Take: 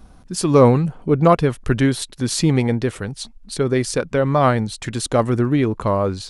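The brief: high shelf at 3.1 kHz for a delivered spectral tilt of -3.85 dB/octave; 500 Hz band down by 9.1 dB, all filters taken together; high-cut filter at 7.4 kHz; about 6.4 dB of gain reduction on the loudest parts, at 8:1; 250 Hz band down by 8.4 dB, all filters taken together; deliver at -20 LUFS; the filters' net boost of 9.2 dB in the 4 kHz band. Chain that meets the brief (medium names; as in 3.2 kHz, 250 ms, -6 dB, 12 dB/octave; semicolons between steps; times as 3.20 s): low-pass 7.4 kHz; peaking EQ 250 Hz -9 dB; peaking EQ 500 Hz -9 dB; treble shelf 3.1 kHz +5 dB; peaking EQ 4 kHz +7.5 dB; compression 8:1, threshold -19 dBFS; trim +4.5 dB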